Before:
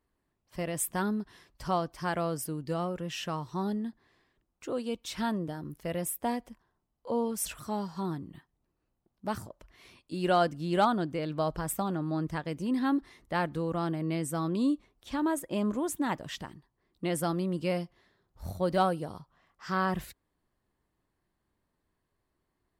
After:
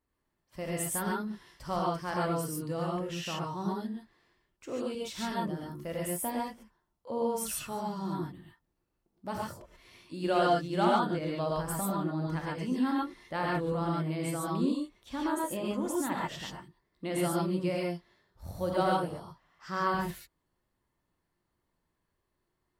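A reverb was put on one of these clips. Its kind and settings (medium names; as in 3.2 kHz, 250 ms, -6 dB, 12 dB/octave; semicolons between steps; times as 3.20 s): gated-style reverb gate 160 ms rising, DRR -3.5 dB; trim -5 dB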